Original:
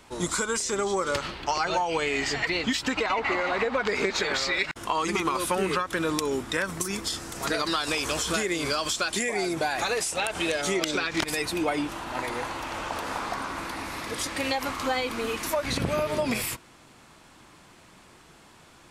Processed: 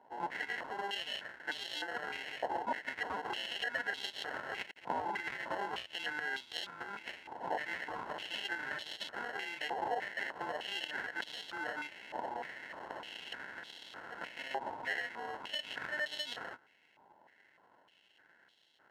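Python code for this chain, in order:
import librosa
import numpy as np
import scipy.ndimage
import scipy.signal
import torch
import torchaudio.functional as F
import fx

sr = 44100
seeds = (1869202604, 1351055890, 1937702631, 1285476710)

y = fx.sample_hold(x, sr, seeds[0], rate_hz=1200.0, jitter_pct=0)
y = fx.filter_held_bandpass(y, sr, hz=3.3, low_hz=910.0, high_hz=3500.0)
y = y * 10.0 ** (2.5 / 20.0)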